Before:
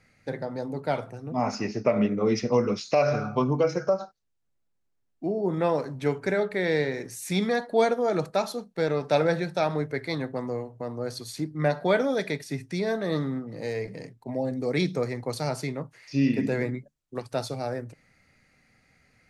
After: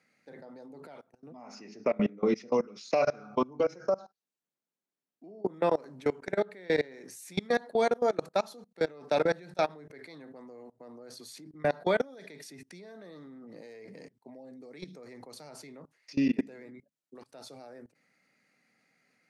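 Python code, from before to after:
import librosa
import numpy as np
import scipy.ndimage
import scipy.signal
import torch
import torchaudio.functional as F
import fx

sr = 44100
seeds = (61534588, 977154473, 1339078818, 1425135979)

y = fx.edit(x, sr, fx.fade_in_from(start_s=0.87, length_s=0.88, floor_db=-16.5), tone=tone)
y = scipy.signal.sosfilt(scipy.signal.butter(4, 180.0, 'highpass', fs=sr, output='sos'), y)
y = fx.level_steps(y, sr, step_db=24)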